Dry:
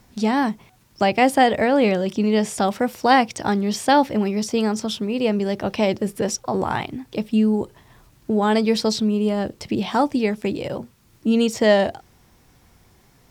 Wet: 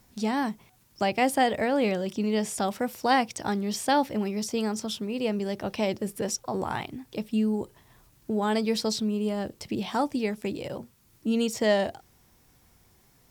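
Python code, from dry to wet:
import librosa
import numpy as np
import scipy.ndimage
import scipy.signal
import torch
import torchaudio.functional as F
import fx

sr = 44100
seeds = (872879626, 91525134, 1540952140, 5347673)

y = fx.high_shelf(x, sr, hz=7300.0, db=8.5)
y = F.gain(torch.from_numpy(y), -7.5).numpy()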